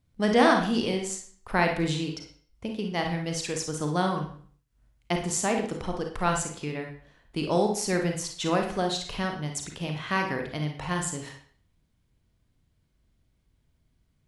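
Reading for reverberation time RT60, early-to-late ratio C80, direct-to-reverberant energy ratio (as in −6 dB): 0.50 s, 11.0 dB, 2.5 dB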